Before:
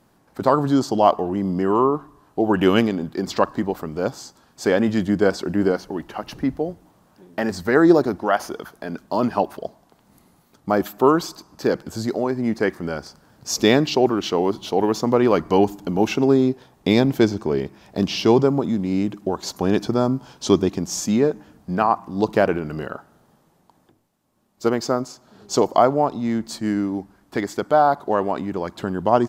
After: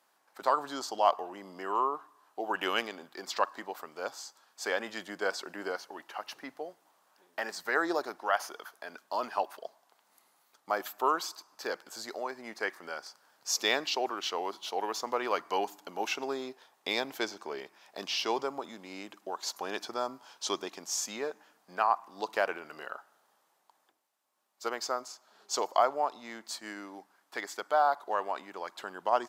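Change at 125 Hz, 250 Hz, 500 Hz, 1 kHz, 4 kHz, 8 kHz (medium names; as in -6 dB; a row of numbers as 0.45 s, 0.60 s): under -30 dB, -23.5 dB, -15.0 dB, -8.0 dB, -5.5 dB, -5.5 dB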